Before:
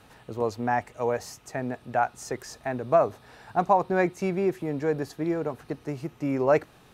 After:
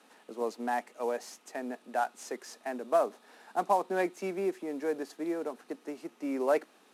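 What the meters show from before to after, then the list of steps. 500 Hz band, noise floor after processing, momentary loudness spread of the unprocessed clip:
-5.5 dB, -63 dBFS, 11 LU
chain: CVSD coder 64 kbps; steep high-pass 210 Hz 48 dB/octave; trim -5.5 dB

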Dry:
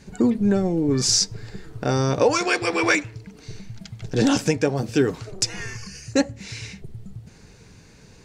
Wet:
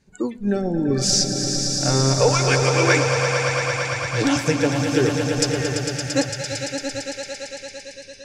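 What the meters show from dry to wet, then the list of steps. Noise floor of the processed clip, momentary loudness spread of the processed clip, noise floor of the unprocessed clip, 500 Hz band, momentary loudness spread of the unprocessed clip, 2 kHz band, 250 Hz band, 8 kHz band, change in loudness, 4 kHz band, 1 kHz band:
-42 dBFS, 13 LU, -49 dBFS, +3.0 dB, 20 LU, +4.0 dB, 0.0 dB, +4.0 dB, +1.5 dB, +4.0 dB, +3.5 dB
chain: echo with a slow build-up 113 ms, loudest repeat 5, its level -8 dB; spectral noise reduction 15 dB

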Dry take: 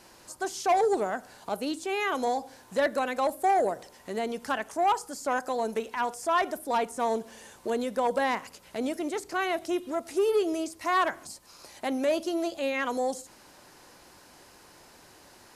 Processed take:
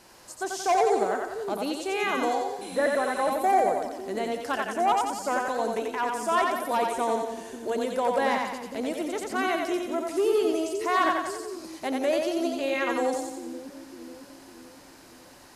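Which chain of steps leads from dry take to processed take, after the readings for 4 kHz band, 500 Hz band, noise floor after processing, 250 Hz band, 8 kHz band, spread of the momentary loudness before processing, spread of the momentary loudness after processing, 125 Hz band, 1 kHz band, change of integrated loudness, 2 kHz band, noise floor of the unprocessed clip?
+2.0 dB, +2.5 dB, -51 dBFS, +2.5 dB, +2.5 dB, 11 LU, 12 LU, no reading, +2.5 dB, +2.0 dB, +2.5 dB, -55 dBFS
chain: two-band feedback delay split 370 Hz, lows 552 ms, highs 89 ms, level -3 dB; spectral replace 2.64–3.28 s, 2.1–11 kHz after

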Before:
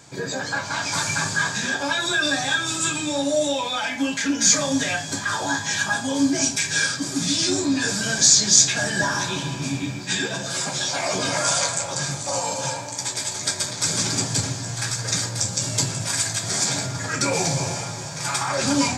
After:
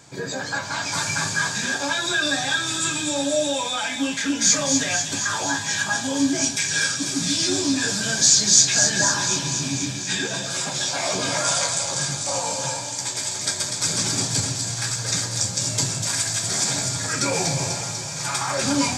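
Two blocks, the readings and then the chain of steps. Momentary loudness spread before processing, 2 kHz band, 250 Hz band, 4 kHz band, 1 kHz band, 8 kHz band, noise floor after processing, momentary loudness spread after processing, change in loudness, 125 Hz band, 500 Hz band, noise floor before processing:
9 LU, -0.5 dB, -1.0 dB, +1.0 dB, -1.0 dB, +1.0 dB, -30 dBFS, 8 LU, +0.5 dB, -1.0 dB, -1.0 dB, -32 dBFS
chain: feedback echo behind a high-pass 246 ms, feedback 73%, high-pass 3.1 kHz, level -5 dB; trim -1 dB

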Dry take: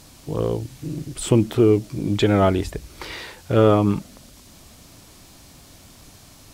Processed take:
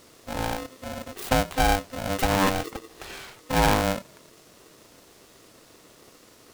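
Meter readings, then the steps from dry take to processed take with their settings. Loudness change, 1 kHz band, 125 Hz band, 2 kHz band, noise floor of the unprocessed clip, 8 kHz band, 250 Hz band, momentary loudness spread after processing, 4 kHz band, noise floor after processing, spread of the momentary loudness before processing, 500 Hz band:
-5.0 dB, +3.0 dB, -9.5 dB, +5.5 dB, -48 dBFS, +1.5 dB, -9.0 dB, 18 LU, +2.0 dB, -54 dBFS, 17 LU, -8.5 dB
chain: tracing distortion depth 0.31 ms; polarity switched at an audio rate 390 Hz; trim -6 dB

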